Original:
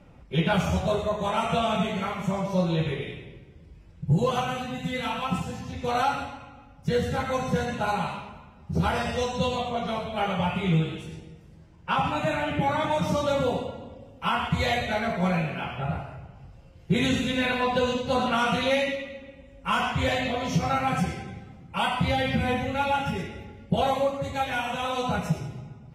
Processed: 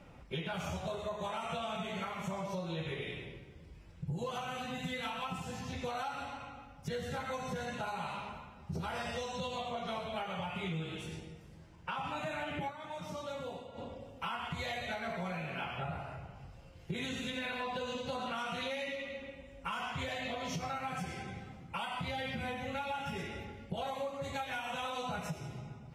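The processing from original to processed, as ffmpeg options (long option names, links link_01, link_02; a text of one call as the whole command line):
ffmpeg -i in.wav -filter_complex "[0:a]asplit=3[link_01][link_02][link_03];[link_01]atrim=end=12.96,asetpts=PTS-STARTPTS,afade=type=out:start_time=12.68:duration=0.28:curve=exp:silence=0.199526[link_04];[link_02]atrim=start=12.96:end=13.51,asetpts=PTS-STARTPTS,volume=-14dB[link_05];[link_03]atrim=start=13.51,asetpts=PTS-STARTPTS,afade=type=in:duration=0.28:curve=exp:silence=0.199526[link_06];[link_04][link_05][link_06]concat=n=3:v=0:a=1,lowshelf=frequency=480:gain=-6,alimiter=level_in=1dB:limit=-24dB:level=0:latency=1:release=418,volume=-1dB,acompressor=threshold=-38dB:ratio=2.5,volume=1dB" out.wav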